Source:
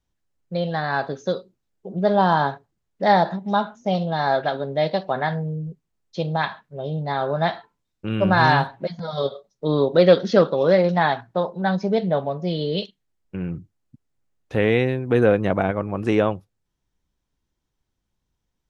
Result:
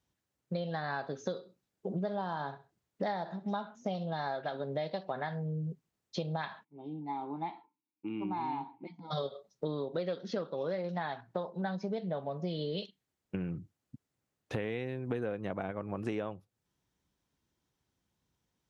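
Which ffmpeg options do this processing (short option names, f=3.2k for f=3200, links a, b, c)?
-filter_complex "[0:a]asettb=1/sr,asplit=3[a][b][c];[a]atrim=end=1.174[d];[b]atrim=start=1.17:end=3.53,asetpts=PTS-STARTPTS,afade=t=in:d=0.004:c=qsin,afade=t=out:st=2.356:d=0.004:c=qsin,aecho=1:1:65|130:0.112|0.0258,atrim=end_sample=104076[e];[c]atrim=start=3.526[f];[d][e]acrossfade=d=0.004:c1=hsin:c2=qsin[g];[g][f]acrossfade=d=0.004:c1=qsin:c2=hsin,asplit=3[h][i][j];[h]afade=t=out:st=6.63:d=0.02[k];[i]asplit=3[l][m][n];[l]bandpass=f=300:t=q:w=8,volume=0dB[o];[m]bandpass=f=870:t=q:w=8,volume=-6dB[p];[n]bandpass=f=2.24k:t=q:w=8,volume=-9dB[q];[o][p][q]amix=inputs=3:normalize=0,afade=t=in:st=6.63:d=0.02,afade=t=out:st=9.1:d=0.02[r];[j]afade=t=in:st=9.1:d=0.02[s];[k][r][s]amix=inputs=3:normalize=0,acompressor=threshold=-32dB:ratio=12,highpass=88"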